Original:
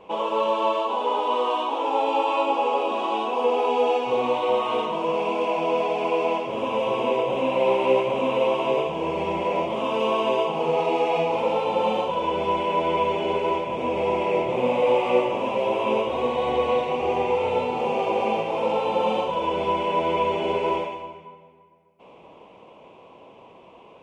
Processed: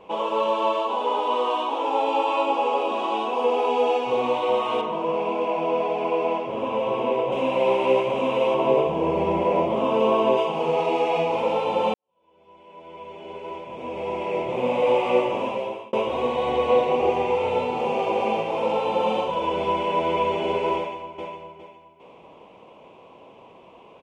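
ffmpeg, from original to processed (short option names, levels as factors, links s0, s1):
-filter_complex "[0:a]asettb=1/sr,asplit=3[s0][s1][s2];[s0]atrim=end=4.814[s3];[s1]atrim=start=4.81:end=7.32,asetpts=PTS-STARTPTS,afade=t=in:d=0.004:c=qsin,afade=t=out:st=2.506:d=0.004:c=qsin,highshelf=f=3500:g=-10.5[s4];[s2]atrim=start=7.316[s5];[s3][s4]acrossfade=d=0.004:c1=hsin:c2=qsin[s6];[s6][s5]acrossfade=d=0.004:c1=qsin:c2=hsin,asettb=1/sr,asplit=3[s7][s8][s9];[s7]atrim=end=8.544[s10];[s8]atrim=start=8.54:end=10.37,asetpts=PTS-STARTPTS,afade=t=in:d=0.004:c=qsin,afade=t=out:st=1.826:d=0.004:c=qsin,tiltshelf=f=1400:g=5[s11];[s9]atrim=start=10.366[s12];[s10][s11]acrossfade=d=0.004:c1=hsin:c2=qsin[s13];[s13][s12]acrossfade=d=0.004:c1=qsin:c2=hsin,asettb=1/sr,asplit=3[s14][s15][s16];[s14]atrim=end=16.704[s17];[s15]atrim=start=16.7:end=17.1,asetpts=PTS-STARTPTS,afade=t=in:d=0.004:c=qsin,afade=t=out:st=0.396:d=0.004:c=qsin,equalizer=f=450:w=0.67:g=4.5[s18];[s16]atrim=start=17.096[s19];[s17][s18]acrossfade=d=0.004:c1=hsin:c2=qsin[s20];[s20][s19]acrossfade=d=0.004:c1=qsin:c2=hsin,asplit=2[s21][s22];[s22]afade=t=in:st=20.77:d=0.01,afade=t=out:st=21.22:d=0.01,aecho=0:1:410|820|1230|1640:0.562341|0.168702|0.0506107|0.0151832[s23];[s21][s23]amix=inputs=2:normalize=0,asplit=3[s24][s25][s26];[s24]atrim=end=11.94,asetpts=PTS-STARTPTS,afade=t=out:st=11.936:d=0.004:c=hsin[s27];[s25]atrim=start=11.94:end=15.93,asetpts=PTS-STARTPTS,afade=t=in:d=2.93:c=qua,afade=t=out:st=3.47:d=0.52[s28];[s26]atrim=start=15.93,asetpts=PTS-STARTPTS,afade=t=in:d=0.004:c=hsin[s29];[s27][s28][s29]concat=n=3:v=0:a=1"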